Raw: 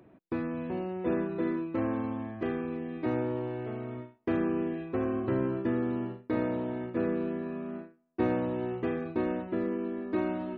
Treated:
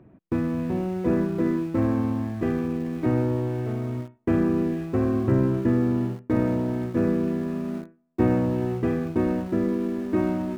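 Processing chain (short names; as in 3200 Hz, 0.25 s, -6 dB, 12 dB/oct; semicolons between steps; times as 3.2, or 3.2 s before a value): tone controls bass +10 dB, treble -15 dB; in parallel at -6 dB: sample gate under -37.5 dBFS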